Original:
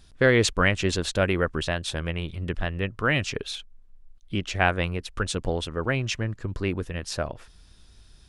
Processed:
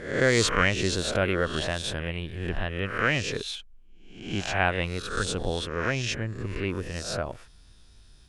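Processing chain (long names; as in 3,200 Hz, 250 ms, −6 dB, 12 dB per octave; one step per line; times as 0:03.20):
peak hold with a rise ahead of every peak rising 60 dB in 0.65 s
level −3.5 dB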